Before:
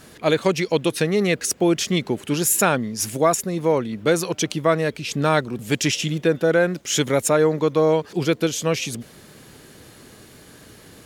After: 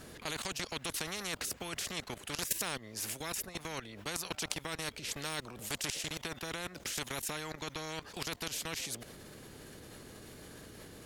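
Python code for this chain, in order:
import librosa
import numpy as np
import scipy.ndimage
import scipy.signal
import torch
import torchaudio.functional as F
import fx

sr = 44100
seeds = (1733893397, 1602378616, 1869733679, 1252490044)

y = fx.low_shelf(x, sr, hz=350.0, db=8.5)
y = fx.level_steps(y, sr, step_db=18)
y = fx.spectral_comp(y, sr, ratio=4.0)
y = F.gain(torch.from_numpy(y), -3.5).numpy()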